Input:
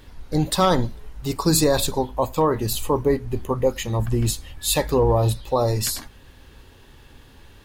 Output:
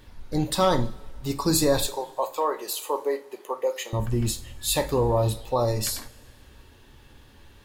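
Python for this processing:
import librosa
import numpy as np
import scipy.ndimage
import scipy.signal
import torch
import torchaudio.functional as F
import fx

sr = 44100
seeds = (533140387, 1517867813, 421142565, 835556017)

y = fx.highpass(x, sr, hz=420.0, slope=24, at=(1.86, 3.93))
y = fx.rev_double_slope(y, sr, seeds[0], early_s=0.31, late_s=1.8, knee_db=-20, drr_db=7.5)
y = y * 10.0 ** (-4.0 / 20.0)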